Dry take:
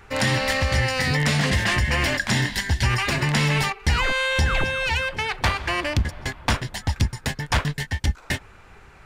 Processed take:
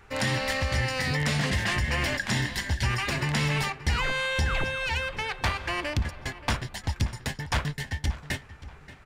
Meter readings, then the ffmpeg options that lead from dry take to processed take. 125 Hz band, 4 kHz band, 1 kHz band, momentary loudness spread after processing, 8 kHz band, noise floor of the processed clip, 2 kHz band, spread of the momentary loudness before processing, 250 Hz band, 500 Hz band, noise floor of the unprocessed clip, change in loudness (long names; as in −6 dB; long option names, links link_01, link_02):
−5.5 dB, −5.5 dB, −5.5 dB, 8 LU, −5.5 dB, −49 dBFS, −5.5 dB, 6 LU, −5.5 dB, −5.5 dB, −48 dBFS, −5.5 dB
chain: -filter_complex "[0:a]asplit=2[link_01][link_02];[link_02]adelay=580,lowpass=frequency=3700:poles=1,volume=-15.5dB,asplit=2[link_03][link_04];[link_04]adelay=580,lowpass=frequency=3700:poles=1,volume=0.35,asplit=2[link_05][link_06];[link_06]adelay=580,lowpass=frequency=3700:poles=1,volume=0.35[link_07];[link_01][link_03][link_05][link_07]amix=inputs=4:normalize=0,volume=-5.5dB"